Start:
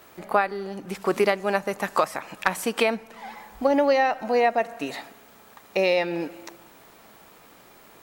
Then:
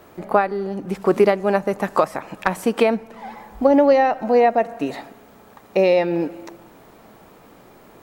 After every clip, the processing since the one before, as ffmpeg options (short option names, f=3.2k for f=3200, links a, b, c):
-af "tiltshelf=f=1.1k:g=6,volume=2.5dB"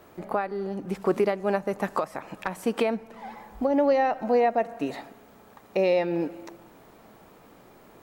-af "alimiter=limit=-8.5dB:level=0:latency=1:release=288,volume=-5dB"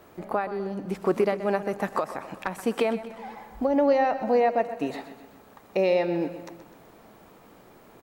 -af "aecho=1:1:127|254|381|508|635:0.224|0.112|0.056|0.028|0.014"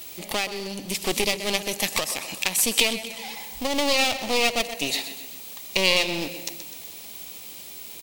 -af "aeval=exprs='clip(val(0),-1,0.0188)':c=same,aexciter=amount=11.6:drive=6.1:freq=2.3k,volume=-1dB"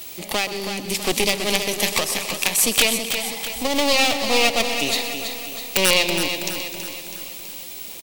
-filter_complex "[0:a]acrossover=split=130[a][b];[b]aeval=exprs='(mod(2.37*val(0)+1,2)-1)/2.37':c=same[c];[a][c]amix=inputs=2:normalize=0,aecho=1:1:326|652|978|1304|1630|1956:0.398|0.211|0.112|0.0593|0.0314|0.0166,volume=3.5dB"